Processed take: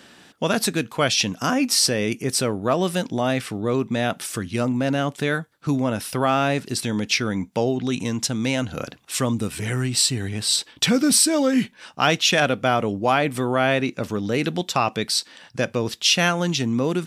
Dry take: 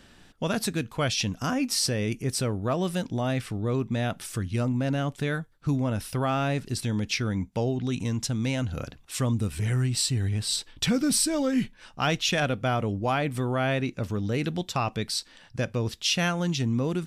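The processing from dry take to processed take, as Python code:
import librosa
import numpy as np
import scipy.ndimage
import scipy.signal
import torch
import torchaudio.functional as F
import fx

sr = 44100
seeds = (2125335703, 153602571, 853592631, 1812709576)

y = scipy.signal.sosfilt(scipy.signal.bessel(2, 220.0, 'highpass', norm='mag', fs=sr, output='sos'), x)
y = F.gain(torch.from_numpy(y), 7.5).numpy()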